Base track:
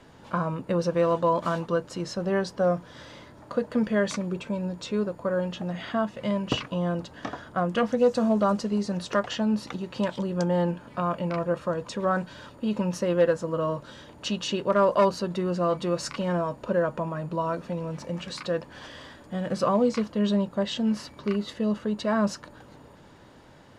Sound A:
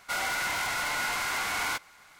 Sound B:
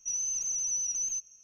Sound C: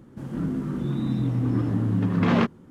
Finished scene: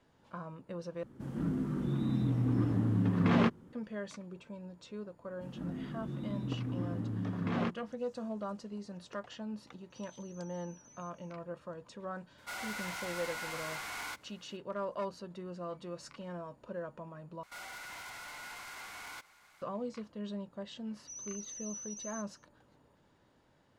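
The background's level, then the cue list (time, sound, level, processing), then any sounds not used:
base track −16.5 dB
0:01.03: overwrite with C −6 dB
0:05.24: mix in C −13 dB
0:09.90: mix in B −15.5 dB + downward compressor, threshold −45 dBFS
0:12.38: mix in A −11 dB
0:17.43: overwrite with A −8 dB + brickwall limiter −32 dBFS
0:21.02: mix in B −14 dB

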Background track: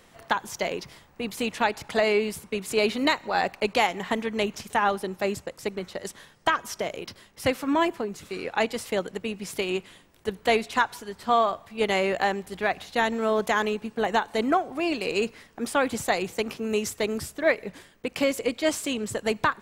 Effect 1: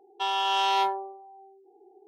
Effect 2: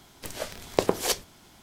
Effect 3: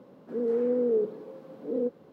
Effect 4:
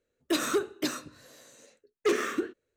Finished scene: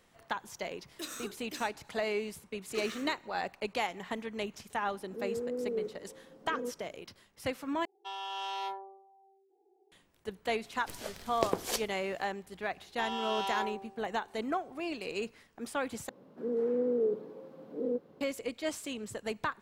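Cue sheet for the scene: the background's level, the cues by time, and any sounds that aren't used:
background track −10.5 dB
0:00.69: mix in 4 −17 dB + high-shelf EQ 2,600 Hz +10 dB
0:04.82: mix in 3 −9.5 dB
0:07.85: overwrite with 1 −13 dB
0:10.64: mix in 2 −7.5 dB
0:12.78: mix in 1 −10.5 dB
0:16.09: overwrite with 3 −4 dB

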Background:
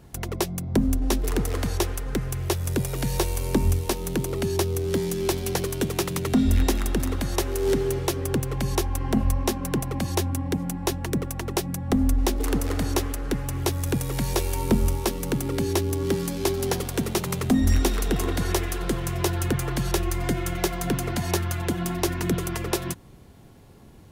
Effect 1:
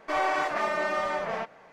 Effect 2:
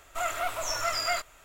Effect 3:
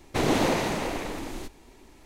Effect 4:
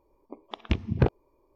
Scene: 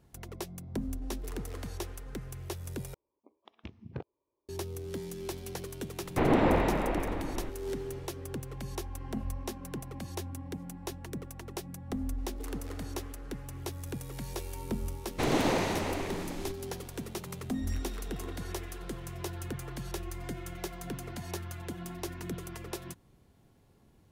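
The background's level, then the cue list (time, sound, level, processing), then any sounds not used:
background −13.5 dB
0:02.94: overwrite with 4 −17.5 dB + high-pass filter 81 Hz
0:06.02: mix in 3 −0.5 dB + Bessel low-pass filter 1,900 Hz, order 4
0:15.04: mix in 3 −4 dB + high-shelf EQ 11,000 Hz −3.5 dB
not used: 1, 2

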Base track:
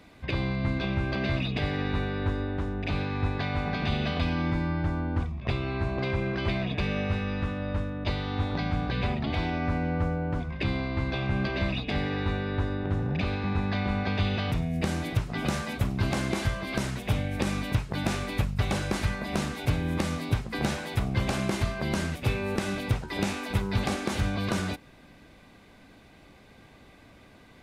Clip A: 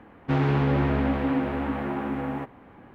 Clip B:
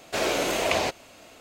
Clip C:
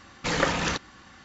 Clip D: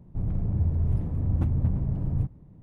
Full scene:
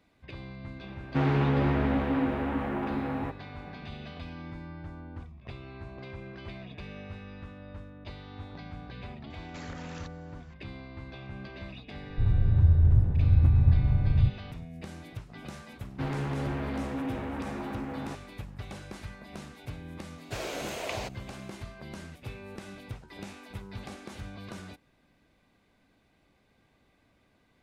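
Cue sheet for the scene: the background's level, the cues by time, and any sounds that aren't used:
base track −14 dB
0:00.86: mix in A −2.5 dB
0:09.30: mix in C −12.5 dB + downward compressor, threshold −30 dBFS
0:12.03: mix in D −3 dB + low shelf with overshoot 140 Hz +6.5 dB, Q 1.5
0:15.70: mix in A −14 dB + leveller curve on the samples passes 2
0:20.18: mix in B −11 dB

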